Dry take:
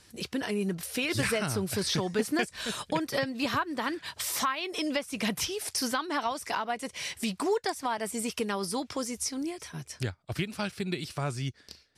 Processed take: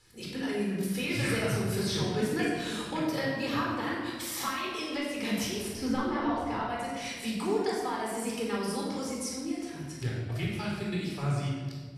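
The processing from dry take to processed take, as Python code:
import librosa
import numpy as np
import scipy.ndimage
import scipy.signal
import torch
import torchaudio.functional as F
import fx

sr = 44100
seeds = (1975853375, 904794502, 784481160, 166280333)

y = fx.riaa(x, sr, side='playback', at=(5.68, 6.61))
y = fx.room_shoebox(y, sr, seeds[0], volume_m3=1500.0, walls='mixed', distance_m=4.1)
y = y * 10.0 ** (-9.0 / 20.0)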